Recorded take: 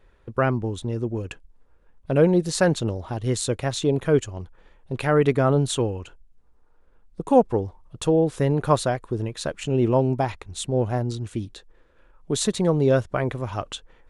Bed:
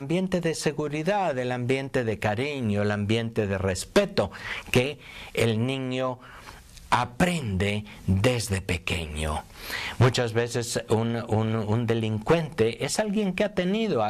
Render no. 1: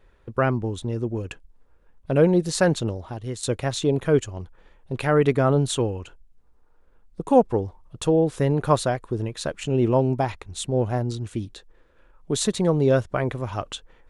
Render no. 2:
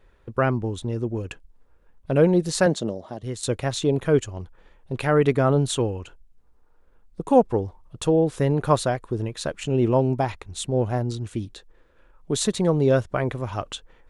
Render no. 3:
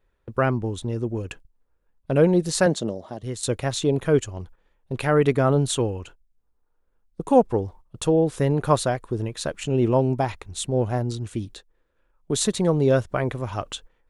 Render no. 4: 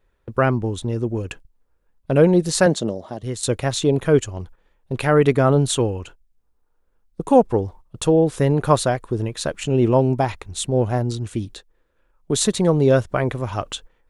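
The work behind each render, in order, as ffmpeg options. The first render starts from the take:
ffmpeg -i in.wav -filter_complex "[0:a]asplit=2[link_01][link_02];[link_01]atrim=end=3.43,asetpts=PTS-STARTPTS,afade=type=out:start_time=2.79:duration=0.64:silence=0.298538[link_03];[link_02]atrim=start=3.43,asetpts=PTS-STARTPTS,afade=type=in:duration=0.004:curve=hsin:silence=0.298538[link_04];[link_03][link_04]concat=n=2:v=0:a=1" out.wav
ffmpeg -i in.wav -filter_complex "[0:a]asettb=1/sr,asplit=3[link_01][link_02][link_03];[link_01]atrim=end=2.664[link_04];[link_02]atrim=start=2.66:end=3.23,asetpts=PTS-STARTPTS,afade=type=in:duration=0.004:curve=qsin,afade=type=out:start_time=0.566:duration=0.004:curve=qsin,highpass=180,equalizer=frequency=200:width_type=q:width=4:gain=5,equalizer=frequency=610:width_type=q:width=4:gain=6,equalizer=frequency=910:width_type=q:width=4:gain=-4,equalizer=frequency=1400:width_type=q:width=4:gain=-5,equalizer=frequency=2500:width_type=q:width=4:gain=-9,lowpass=frequency=9800:width=0.5412,lowpass=frequency=9800:width=1.3066[link_05];[link_03]atrim=start=3.226[link_06];[link_04][link_05]acrossfade=duration=0.004:curve1=hsin:curve2=qsin[link_07];[link_07][link_06]acrossfade=duration=0.004:curve1=qsin:curve2=hsin" out.wav
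ffmpeg -i in.wav -af "agate=range=-12dB:threshold=-43dB:ratio=16:detection=peak,highshelf=frequency=9000:gain=5" out.wav
ffmpeg -i in.wav -af "volume=3.5dB,alimiter=limit=-3dB:level=0:latency=1" out.wav

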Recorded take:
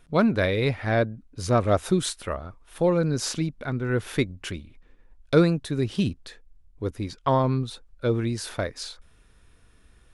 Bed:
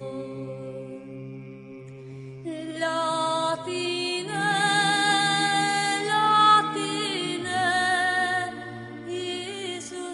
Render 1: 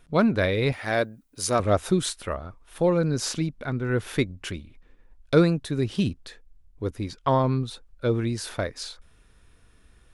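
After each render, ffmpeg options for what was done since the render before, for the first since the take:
ffmpeg -i in.wav -filter_complex "[0:a]asettb=1/sr,asplit=3[link_01][link_02][link_03];[link_01]atrim=end=0.724[link_04];[link_02]atrim=start=0.72:end=1.6,asetpts=PTS-STARTPTS,afade=type=in:duration=0.004:curve=qsin,afade=type=out:start_time=0.876:duration=0.004:curve=qsin,aemphasis=mode=production:type=bsi[link_05];[link_03]atrim=start=1.596[link_06];[link_04][link_05]acrossfade=duration=0.004:curve1=hsin:curve2=qsin[link_07];[link_07][link_06]acrossfade=duration=0.004:curve1=qsin:curve2=hsin" out.wav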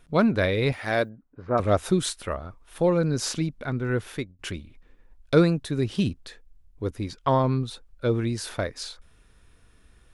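ffmpeg -i in.wav -filter_complex "[0:a]asplit=3[link_01][link_02][link_03];[link_01]afade=type=out:start_time=1.08:duration=0.02[link_04];[link_02]lowpass=frequency=1600:width=0.5412,lowpass=frequency=1600:width=1.3066,afade=type=in:start_time=1.08:duration=0.02,afade=type=out:start_time=1.57:duration=0.02[link_05];[link_03]afade=type=in:start_time=1.57:duration=0.02[link_06];[link_04][link_05][link_06]amix=inputs=3:normalize=0,asplit=2[link_07][link_08];[link_07]atrim=end=4.39,asetpts=PTS-STARTPTS,afade=type=out:start_time=3.89:duration=0.5:silence=0.0668344[link_09];[link_08]atrim=start=4.39,asetpts=PTS-STARTPTS,afade=type=in:duration=0.004:curve=hsin:silence=0.0668344[link_10];[link_09][link_10]concat=n=2:v=0:a=1" out.wav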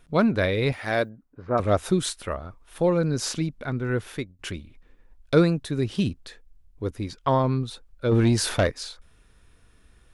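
ffmpeg -i in.wav -filter_complex "[0:a]asplit=3[link_01][link_02][link_03];[link_01]afade=type=out:start_time=8.11:duration=0.02[link_04];[link_02]aeval=exprs='0.2*sin(PI/2*1.78*val(0)/0.2)':channel_layout=same,afade=type=in:start_time=8.11:duration=0.02,afade=type=out:start_time=8.7:duration=0.02[link_05];[link_03]afade=type=in:start_time=8.7:duration=0.02[link_06];[link_04][link_05][link_06]amix=inputs=3:normalize=0" out.wav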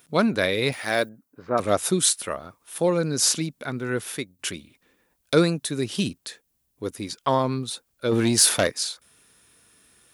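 ffmpeg -i in.wav -af "highpass=160,aemphasis=mode=production:type=75kf" out.wav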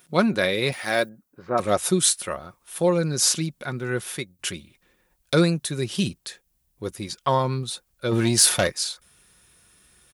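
ffmpeg -i in.wav -af "asubboost=boost=3:cutoff=120,aecho=1:1:5.5:0.36" out.wav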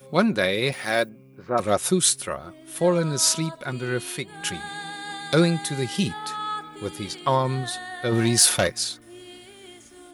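ffmpeg -i in.wav -i bed.wav -filter_complex "[1:a]volume=-13dB[link_01];[0:a][link_01]amix=inputs=2:normalize=0" out.wav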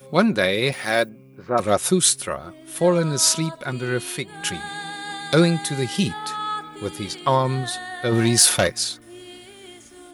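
ffmpeg -i in.wav -af "volume=2.5dB,alimiter=limit=-1dB:level=0:latency=1" out.wav

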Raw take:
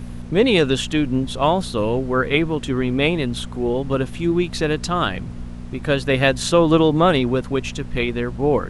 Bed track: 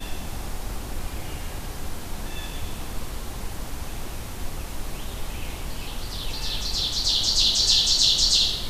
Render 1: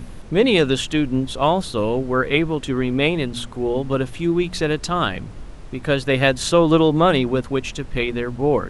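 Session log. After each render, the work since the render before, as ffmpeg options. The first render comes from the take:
ffmpeg -i in.wav -af "bandreject=frequency=60:width_type=h:width=4,bandreject=frequency=120:width_type=h:width=4,bandreject=frequency=180:width_type=h:width=4,bandreject=frequency=240:width_type=h:width=4" out.wav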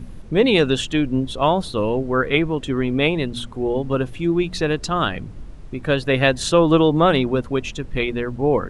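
ffmpeg -i in.wav -af "afftdn=noise_reduction=7:noise_floor=-37" out.wav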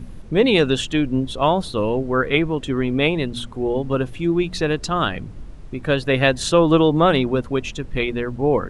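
ffmpeg -i in.wav -af anull out.wav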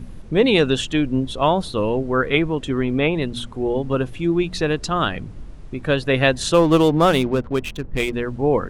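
ffmpeg -i in.wav -filter_complex "[0:a]asettb=1/sr,asplit=3[link_01][link_02][link_03];[link_01]atrim=end=2.704[link_04];[link_02]atrim=start=2.7:end=3.22,asetpts=PTS-STARTPTS,afade=type=in:duration=0.004:curve=qsin,afade=type=out:start_time=0.516:duration=0.004:curve=qsin,acrossover=split=3100[link_05][link_06];[link_06]acompressor=threshold=-41dB:ratio=4:attack=1:release=60[link_07];[link_05][link_07]amix=inputs=2:normalize=0[link_08];[link_03]atrim=start=3.216[link_09];[link_04][link_08]acrossfade=duration=0.004:curve1=hsin:curve2=qsin[link_10];[link_10][link_09]acrossfade=duration=0.004:curve1=qsin:curve2=hsin,asplit=3[link_11][link_12][link_13];[link_11]afade=type=out:start_time=6.53:duration=0.02[link_14];[link_12]adynamicsmooth=sensitivity=6.5:basefreq=780,afade=type=in:start_time=6.53:duration=0.02,afade=type=out:start_time=8.12:duration=0.02[link_15];[link_13]afade=type=in:start_time=8.12:duration=0.02[link_16];[link_14][link_15][link_16]amix=inputs=3:normalize=0" out.wav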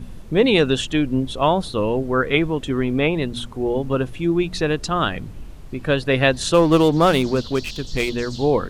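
ffmpeg -i in.wav -i bed.wav -filter_complex "[1:a]volume=-19dB[link_01];[0:a][link_01]amix=inputs=2:normalize=0" out.wav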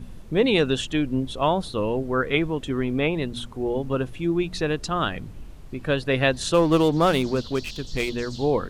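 ffmpeg -i in.wav -af "volume=-4dB" out.wav

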